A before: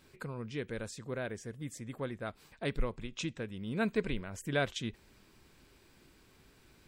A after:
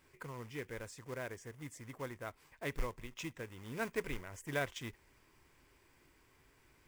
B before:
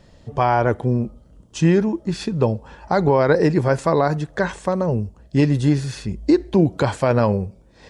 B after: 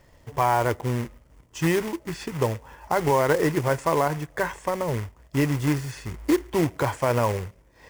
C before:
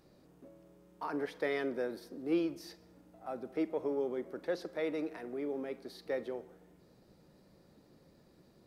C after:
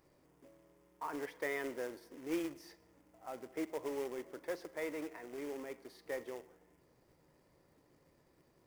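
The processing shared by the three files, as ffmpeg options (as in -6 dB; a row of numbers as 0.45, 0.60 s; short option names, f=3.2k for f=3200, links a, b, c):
-af "acrusher=bits=3:mode=log:mix=0:aa=0.000001,equalizer=f=200:t=o:w=0.33:g=-11,equalizer=f=1k:t=o:w=0.33:g=6,equalizer=f=2k:t=o:w=0.33:g=6,equalizer=f=4k:t=o:w=0.33:g=-7,volume=-5.5dB"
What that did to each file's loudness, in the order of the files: -5.5, -5.5, -5.0 LU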